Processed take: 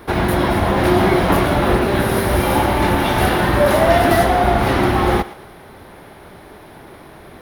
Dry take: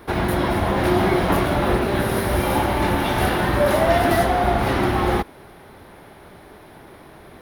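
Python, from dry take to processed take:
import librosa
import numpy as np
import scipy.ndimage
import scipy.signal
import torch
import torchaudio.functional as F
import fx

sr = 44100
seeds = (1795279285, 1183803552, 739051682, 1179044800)

y = fx.echo_thinned(x, sr, ms=115, feedback_pct=39, hz=420.0, wet_db=-16)
y = y * librosa.db_to_amplitude(4.0)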